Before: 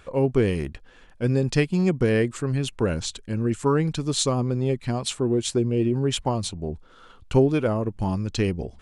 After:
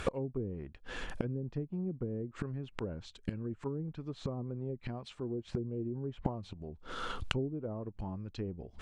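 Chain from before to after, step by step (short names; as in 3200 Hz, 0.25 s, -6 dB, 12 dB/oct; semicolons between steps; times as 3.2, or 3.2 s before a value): treble ducked by the level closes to 390 Hz, closed at -16.5 dBFS; flipped gate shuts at -28 dBFS, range -26 dB; gain +11 dB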